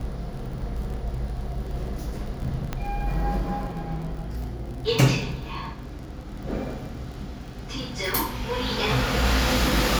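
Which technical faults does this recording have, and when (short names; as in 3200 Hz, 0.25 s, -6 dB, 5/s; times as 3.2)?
crackle 35/s -34 dBFS
2.73 pop -14 dBFS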